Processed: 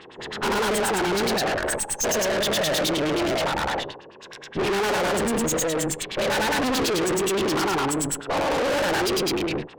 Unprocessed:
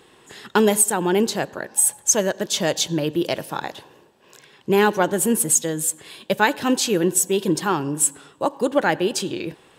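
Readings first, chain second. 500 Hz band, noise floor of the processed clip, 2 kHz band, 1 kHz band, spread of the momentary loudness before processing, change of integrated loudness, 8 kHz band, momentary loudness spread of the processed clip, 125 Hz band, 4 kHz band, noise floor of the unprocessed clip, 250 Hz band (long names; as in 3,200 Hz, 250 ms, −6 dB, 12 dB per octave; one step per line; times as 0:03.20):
−1.5 dB, −45 dBFS, +0.5 dB, −0.5 dB, 10 LU, −3.0 dB, −7.5 dB, 5 LU, −2.5 dB, +1.5 dB, −53 dBFS, −3.0 dB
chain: every bin's largest magnitude spread in time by 240 ms
auto-filter low-pass sine 9.5 Hz 450–5,500 Hz
tube saturation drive 25 dB, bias 0.65
level +3 dB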